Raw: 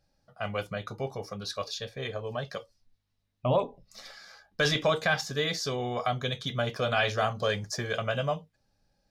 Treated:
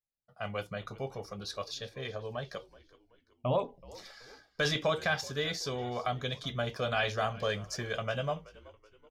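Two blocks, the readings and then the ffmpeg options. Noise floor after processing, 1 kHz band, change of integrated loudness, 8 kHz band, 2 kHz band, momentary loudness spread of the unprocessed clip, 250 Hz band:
-73 dBFS, -4.0 dB, -4.0 dB, -4.0 dB, -4.0 dB, 14 LU, -4.0 dB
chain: -filter_complex "[0:a]agate=range=0.0224:threshold=0.00158:ratio=3:detection=peak,asplit=4[s0][s1][s2][s3];[s1]adelay=377,afreqshift=-66,volume=0.0944[s4];[s2]adelay=754,afreqshift=-132,volume=0.0417[s5];[s3]adelay=1131,afreqshift=-198,volume=0.0182[s6];[s0][s4][s5][s6]amix=inputs=4:normalize=0,volume=0.631"

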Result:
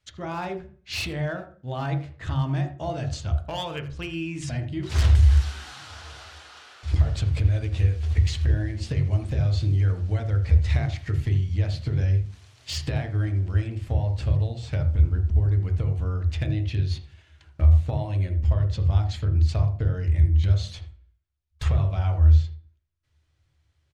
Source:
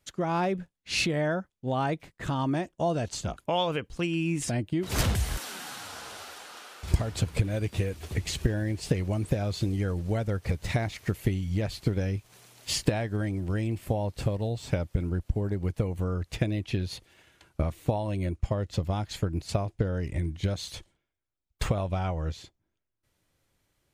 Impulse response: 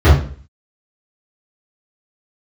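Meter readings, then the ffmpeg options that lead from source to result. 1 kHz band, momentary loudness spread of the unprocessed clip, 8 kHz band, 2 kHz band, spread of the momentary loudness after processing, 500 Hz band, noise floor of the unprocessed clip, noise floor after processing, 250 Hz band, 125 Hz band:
-3.0 dB, 8 LU, no reading, -1.0 dB, 13 LU, -4.5 dB, -81 dBFS, -68 dBFS, -3.5 dB, +8.0 dB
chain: -filter_complex "[0:a]lowpass=5500,equalizer=f=240:w=0.31:g=-12,asoftclip=type=hard:threshold=0.0473,asplit=2[s0][s1];[s1]adelay=80,highpass=300,lowpass=3400,asoftclip=type=hard:threshold=0.0188,volume=0.2[s2];[s0][s2]amix=inputs=2:normalize=0,asplit=2[s3][s4];[1:a]atrim=start_sample=2205[s5];[s4][s5]afir=irnorm=-1:irlink=0,volume=0.0282[s6];[s3][s6]amix=inputs=2:normalize=0,alimiter=level_in=2.82:limit=0.891:release=50:level=0:latency=1,volume=0.398"

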